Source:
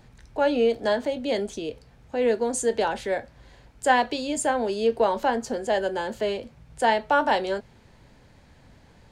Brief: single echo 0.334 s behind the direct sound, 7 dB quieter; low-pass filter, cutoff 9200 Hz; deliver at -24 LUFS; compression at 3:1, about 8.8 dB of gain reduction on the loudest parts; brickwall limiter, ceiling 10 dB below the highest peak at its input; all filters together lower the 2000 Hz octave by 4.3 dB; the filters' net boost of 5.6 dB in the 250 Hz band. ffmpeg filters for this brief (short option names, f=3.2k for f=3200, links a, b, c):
-af "lowpass=9.2k,equalizer=f=250:t=o:g=6.5,equalizer=f=2k:t=o:g=-6,acompressor=threshold=-27dB:ratio=3,alimiter=level_in=1dB:limit=-24dB:level=0:latency=1,volume=-1dB,aecho=1:1:334:0.447,volume=10dB"